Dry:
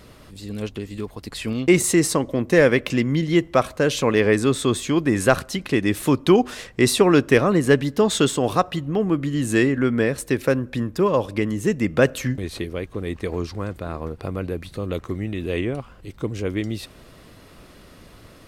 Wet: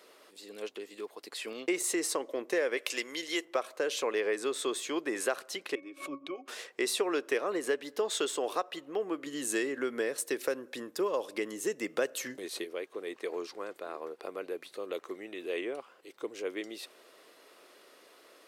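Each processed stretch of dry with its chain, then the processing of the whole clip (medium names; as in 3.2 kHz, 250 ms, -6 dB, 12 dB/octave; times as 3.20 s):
2.77–3.45 s: low-pass 11 kHz + RIAA curve recording
5.75–6.48 s: treble shelf 2.3 kHz +11.5 dB + pitch-class resonator C#, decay 0.14 s + swell ahead of each attack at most 140 dB/s
9.26–12.64 s: tone controls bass +7 dB, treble +6 dB + band-stop 2.4 kHz, Q 28
whole clip: Chebyshev high-pass 390 Hz, order 3; compression 3:1, threshold -21 dBFS; trim -7 dB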